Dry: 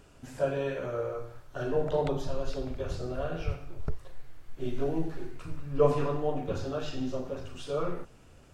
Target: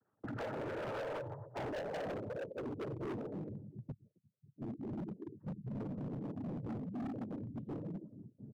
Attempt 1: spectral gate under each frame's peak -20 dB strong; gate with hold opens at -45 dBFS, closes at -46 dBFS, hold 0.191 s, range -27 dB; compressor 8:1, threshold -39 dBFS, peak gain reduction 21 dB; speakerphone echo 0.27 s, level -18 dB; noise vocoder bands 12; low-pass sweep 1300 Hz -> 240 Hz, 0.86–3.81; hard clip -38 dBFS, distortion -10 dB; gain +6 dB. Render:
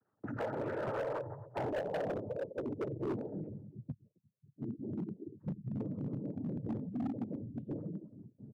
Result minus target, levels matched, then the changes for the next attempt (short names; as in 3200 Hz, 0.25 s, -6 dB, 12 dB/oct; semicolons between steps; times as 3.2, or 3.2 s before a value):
hard clip: distortion -4 dB
change: hard clip -44 dBFS, distortion -5 dB